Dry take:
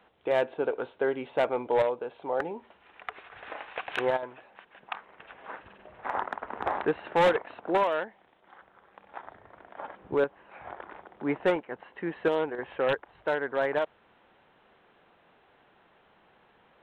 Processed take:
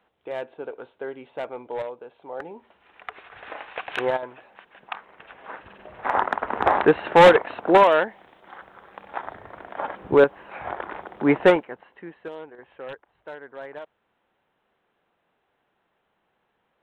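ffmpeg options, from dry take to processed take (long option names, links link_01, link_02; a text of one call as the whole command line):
ffmpeg -i in.wav -af "volume=10.5dB,afade=type=in:start_time=2.3:duration=1.02:silence=0.354813,afade=type=in:start_time=5.52:duration=0.9:silence=0.421697,afade=type=out:start_time=11.45:duration=0.3:silence=0.266073,afade=type=out:start_time=11.75:duration=0.44:silence=0.334965" out.wav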